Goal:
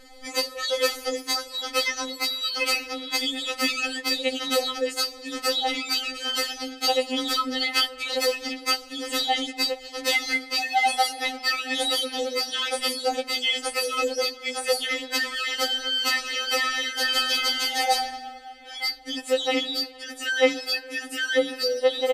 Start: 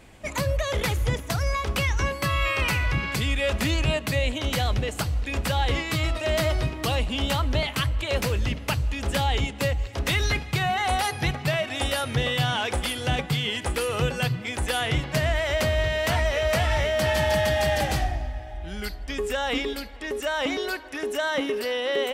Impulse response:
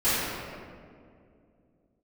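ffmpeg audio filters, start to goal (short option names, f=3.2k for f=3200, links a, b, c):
-af "equalizer=f=4.7k:t=o:w=0.21:g=14,aecho=1:1:6.2:0.86,afftfilt=real='re*3.46*eq(mod(b,12),0)':imag='im*3.46*eq(mod(b,12),0)':win_size=2048:overlap=0.75,volume=2.5dB"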